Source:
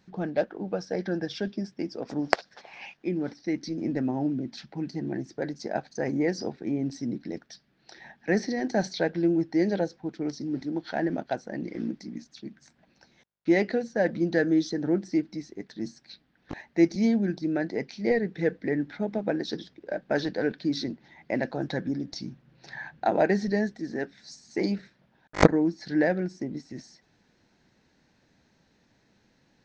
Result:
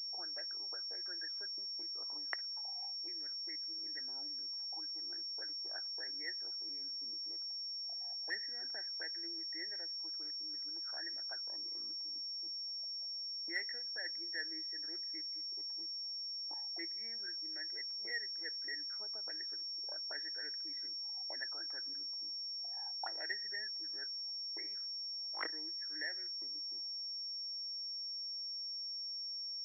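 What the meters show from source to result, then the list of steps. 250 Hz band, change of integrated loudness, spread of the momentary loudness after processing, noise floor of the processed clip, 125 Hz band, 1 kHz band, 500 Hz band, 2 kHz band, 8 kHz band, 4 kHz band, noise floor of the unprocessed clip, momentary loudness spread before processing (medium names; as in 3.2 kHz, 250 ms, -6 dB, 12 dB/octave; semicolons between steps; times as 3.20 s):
-34.5 dB, -10.5 dB, 1 LU, -43 dBFS, under -40 dB, -21.0 dB, -30.5 dB, -10.5 dB, no reading, +7.0 dB, -67 dBFS, 14 LU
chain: ladder high-pass 270 Hz, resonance 45%; auto-wah 660–1900 Hz, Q 11, up, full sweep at -29.5 dBFS; class-D stage that switches slowly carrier 5.5 kHz; trim +5.5 dB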